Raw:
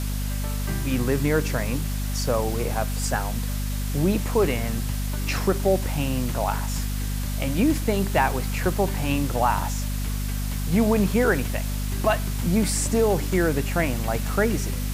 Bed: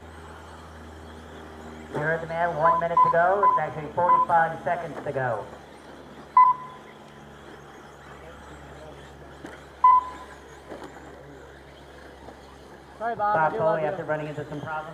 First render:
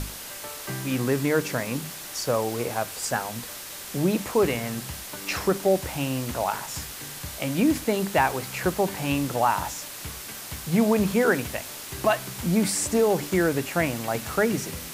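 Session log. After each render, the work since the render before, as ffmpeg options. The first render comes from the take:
-af "bandreject=f=50:t=h:w=6,bandreject=f=100:t=h:w=6,bandreject=f=150:t=h:w=6,bandreject=f=200:t=h:w=6,bandreject=f=250:t=h:w=6"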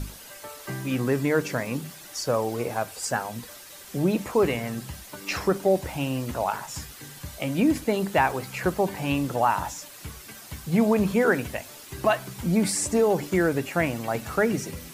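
-af "afftdn=nr=9:nf=-39"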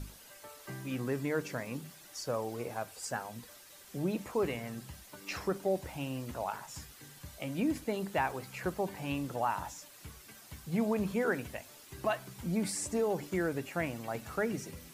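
-af "volume=-10dB"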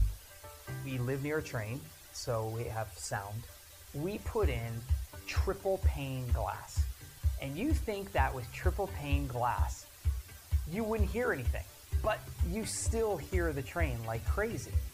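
-af "lowshelf=f=120:t=q:w=3:g=14"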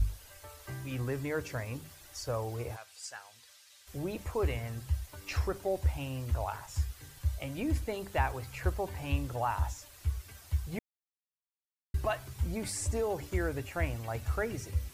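-filter_complex "[0:a]asplit=3[a][b][c];[a]afade=t=out:st=2.75:d=0.02[d];[b]bandpass=f=4.2k:t=q:w=0.71,afade=t=in:st=2.75:d=0.02,afade=t=out:st=3.86:d=0.02[e];[c]afade=t=in:st=3.86:d=0.02[f];[d][e][f]amix=inputs=3:normalize=0,asplit=3[g][h][i];[g]atrim=end=10.79,asetpts=PTS-STARTPTS,afade=t=out:st=10.786:d=0.004:c=hsin[j];[h]atrim=start=10.79:end=11.94,asetpts=PTS-STARTPTS,volume=0[k];[i]atrim=start=11.94,asetpts=PTS-STARTPTS,afade=t=in:d=0.004:c=hsin[l];[j][k][l]concat=n=3:v=0:a=1"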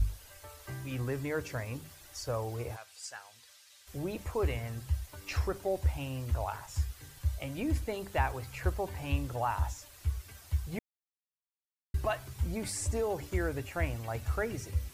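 -af anull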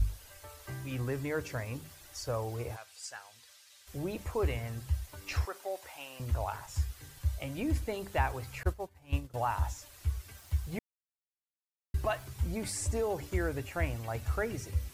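-filter_complex "[0:a]asettb=1/sr,asplit=3[a][b][c];[a]atrim=end=5.454[d];[b]atrim=start=5.45:end=6.2,asetpts=PTS-STARTPTS,afade=t=in:d=0.004:c=qsin,afade=t=out:st=0.746:d=0.004:c=qsin,highpass=670[e];[c]atrim=start=6.196[f];[d][e]acrossfade=d=0.004:c1=hsin:c2=qsin[g];[g][f]acrossfade=d=0.004:c1=qsin:c2=hsin,asettb=1/sr,asplit=3[h][i][j];[h]atrim=end=8.634[k];[i]atrim=start=8.63:end=9.34,asetpts=PTS-STARTPTS,afade=t=in:d=0.004:c=qsin,afade=t=out:st=0.706:d=0.004:c=qsin,agate=range=-33dB:threshold=-28dB:ratio=3:release=100:detection=peak[l];[j]atrim=start=9.336[m];[k][l]acrossfade=d=0.004:c1=hsin:c2=qsin[n];[n][m]acrossfade=d=0.004:c1=qsin:c2=hsin,asettb=1/sr,asplit=3[o][p][q];[o]atrim=end=10.384[r];[p]atrim=start=10.38:end=12.25,asetpts=PTS-STARTPTS,afade=t=in:d=0.004:c=qsin,afade=t=out:st=1.866:d=0.004:c=qsin,aeval=exprs='val(0)*gte(abs(val(0)),0.00168)':c=same[s];[q]atrim=start=12.246[t];[r][s]acrossfade=d=0.004:c1=hsin:c2=qsin[u];[u][t]acrossfade=d=0.004:c1=qsin:c2=hsin"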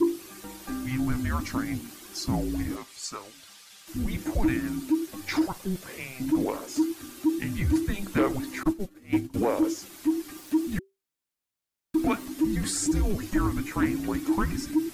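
-af "afreqshift=-390,aeval=exprs='0.15*sin(PI/2*1.58*val(0)/0.15)':c=same"

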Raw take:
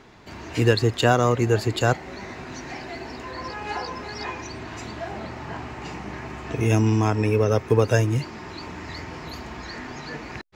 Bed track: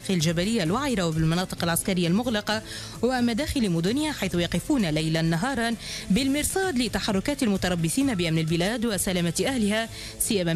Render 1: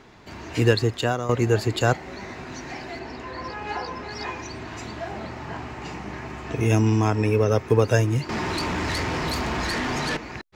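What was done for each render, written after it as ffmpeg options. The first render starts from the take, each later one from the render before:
-filter_complex "[0:a]asettb=1/sr,asplit=3[a][b][c];[a]atrim=end=2.994[d];[b]atrim=start=2.99:end=4.11,asetpts=PTS-STARTPTS,afade=t=in:d=0.004:c=qsin,afade=t=out:st=1.116:d=0.004:c=qsin,highshelf=f=8.2k:g=-12[e];[c]atrim=start=4.106[f];[d][e]acrossfade=d=0.004:c1=hsin:c2=qsin[g];[g][f]acrossfade=d=0.004:c1=qsin:c2=hsin,asettb=1/sr,asplit=3[h][i][j];[h]atrim=end=8.294[k];[i]atrim=start=8.29:end=10.17,asetpts=PTS-STARTPTS,afade=t=in:d=0.004:c=qsin,afade=t=out:st=1.876:d=0.004:c=qsin,aeval=exprs='0.075*sin(PI/2*2.82*val(0)/0.075)':c=same[l];[j]atrim=start=10.166[m];[k][l]acrossfade=d=0.004:c1=hsin:c2=qsin[n];[n][m]acrossfade=d=0.004:c1=qsin:c2=hsin,asplit=2[o][p];[o]atrim=end=1.29,asetpts=PTS-STARTPTS,afade=t=out:st=0.72:d=0.57:silence=0.266073[q];[p]atrim=start=1.29,asetpts=PTS-STARTPTS,afade=t=in:d=0.004:c=hsin:silence=0.266073[r];[q][r]concat=n=2:v=0:a=1"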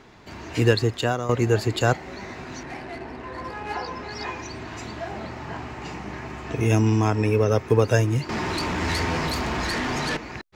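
-filter_complex "[0:a]asettb=1/sr,asplit=3[a][b][c];[a]atrim=end=2.634[d];[b]atrim=start=2.63:end=3.74,asetpts=PTS-STARTPTS,afade=t=in:d=0.004:c=qsin,afade=t=out:st=1.106:d=0.004:c=qsin,adynamicsmooth=sensitivity=7:basefreq=1.9k[e];[c]atrim=start=3.736[f];[d][e]acrossfade=d=0.004:c1=hsin:c2=qsin[g];[g][f]acrossfade=d=0.004:c1=qsin:c2=hsin,asettb=1/sr,asplit=3[h][i][j];[h]atrim=end=8.804[k];[i]atrim=start=8.8:end=9.27,asetpts=PTS-STARTPTS,afade=t=in:d=0.004:c=qsin,afade=t=out:st=0.466:d=0.004:c=qsin,asplit=2[l][m];[m]adelay=12,volume=-5dB[n];[l][n]amix=inputs=2:normalize=0,atrim=end_sample=20727[o];[j]atrim=start=9.266[p];[k][o]acrossfade=d=0.004:c1=hsin:c2=qsin[q];[q][p]acrossfade=d=0.004:c1=qsin:c2=hsin"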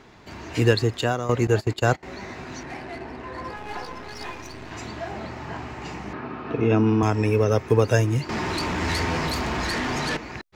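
-filter_complex "[0:a]asettb=1/sr,asplit=3[a][b][c];[a]atrim=end=1.474[d];[b]atrim=start=1.47:end=2.03,asetpts=PTS-STARTPTS,afade=t=in:d=0.004:c=qsin,afade=t=out:st=0.556:d=0.004:c=qsin,agate=range=-19dB:threshold=-27dB:ratio=16:release=100:detection=peak[e];[c]atrim=start=2.026[f];[d][e]acrossfade=d=0.004:c1=hsin:c2=qsin[g];[g][f]acrossfade=d=0.004:c1=qsin:c2=hsin,asettb=1/sr,asplit=3[h][i][j];[h]atrim=end=3.564[k];[i]atrim=start=3.56:end=4.71,asetpts=PTS-STARTPTS,afade=t=in:d=0.004:c=qsin,afade=t=out:st=1.146:d=0.004:c=qsin,aeval=exprs='if(lt(val(0),0),0.251*val(0),val(0))':c=same[l];[j]atrim=start=4.706[m];[k][l]acrossfade=d=0.004:c1=hsin:c2=qsin[n];[n][m]acrossfade=d=0.004:c1=qsin:c2=hsin,asettb=1/sr,asplit=3[o][p][q];[o]atrim=end=6.134[r];[p]atrim=start=6.13:end=7.03,asetpts=PTS-STARTPTS,afade=t=in:d=0.004:c=qsin,afade=t=out:st=0.896:d=0.004:c=qsin,highpass=120,equalizer=f=260:t=q:w=4:g=7,equalizer=f=460:t=q:w=4:g=5,equalizer=f=1.3k:t=q:w=4:g=7,equalizer=f=2k:t=q:w=4:g=-6,equalizer=f=3.2k:t=q:w=4:g=-4,lowpass=f=3.8k:w=0.5412,lowpass=f=3.8k:w=1.3066[s];[q]atrim=start=7.026[t];[r][s]acrossfade=d=0.004:c1=hsin:c2=qsin[u];[u][t]acrossfade=d=0.004:c1=qsin:c2=hsin"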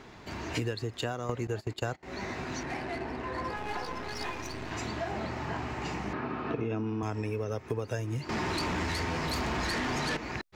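-af "acompressor=threshold=-29dB:ratio=12"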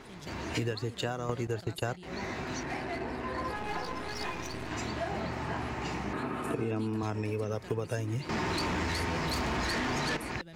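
-filter_complex "[1:a]volume=-25dB[a];[0:a][a]amix=inputs=2:normalize=0"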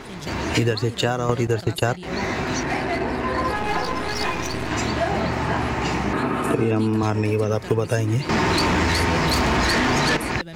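-af "volume=12dB"

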